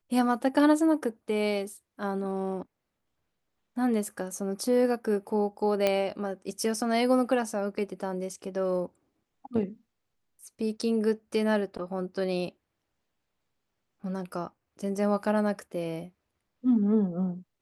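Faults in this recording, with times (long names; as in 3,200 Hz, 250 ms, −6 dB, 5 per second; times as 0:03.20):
0:05.87: click −11 dBFS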